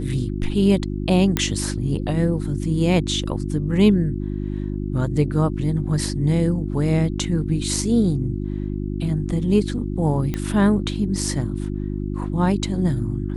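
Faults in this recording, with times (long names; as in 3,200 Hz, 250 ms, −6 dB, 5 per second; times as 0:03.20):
mains hum 50 Hz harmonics 7 −26 dBFS
0:01.37: click −5 dBFS
0:10.34: click −12 dBFS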